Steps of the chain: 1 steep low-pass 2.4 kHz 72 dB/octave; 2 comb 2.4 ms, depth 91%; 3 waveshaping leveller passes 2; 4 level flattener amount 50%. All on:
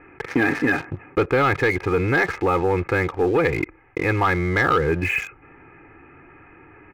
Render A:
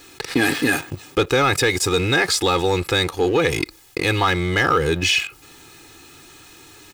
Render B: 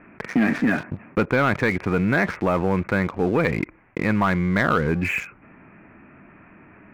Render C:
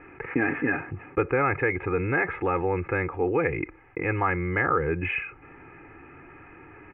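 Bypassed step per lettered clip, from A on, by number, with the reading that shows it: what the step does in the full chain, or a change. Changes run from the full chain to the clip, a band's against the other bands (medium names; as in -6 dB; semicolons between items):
1, 4 kHz band +15.5 dB; 2, 250 Hz band +5.0 dB; 3, crest factor change +4.5 dB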